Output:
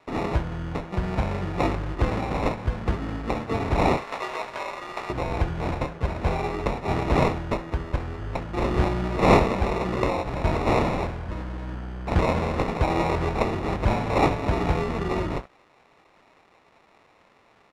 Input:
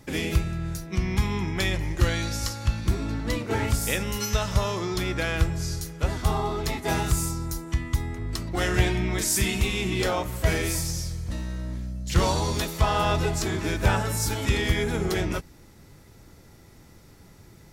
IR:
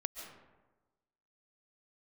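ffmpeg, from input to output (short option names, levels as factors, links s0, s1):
-filter_complex "[0:a]crystalizer=i=3:c=0,acrusher=samples=28:mix=1:aa=0.000001,asettb=1/sr,asplit=3[s0][s1][s2];[s0]atrim=end=3.974[s3];[s1]atrim=start=3.97:end=5.1,asetpts=PTS-STARTPTS,afade=t=in:d=0.004:c=qsin,afade=t=out:st=1.126:d=0.004:c=qsin,highpass=760[s4];[s2]atrim=start=5.096[s5];[s3][s4]acrossfade=d=0.004:c1=hsin:c2=qsin[s6];[s6][s5]acrossfade=d=0.004:c1=qsin:c2=hsin,aecho=1:1:22|67:0.188|0.141,crystalizer=i=5:c=0,acrusher=bits=5:mix=0:aa=0.000001,lowpass=1600,volume=0.794"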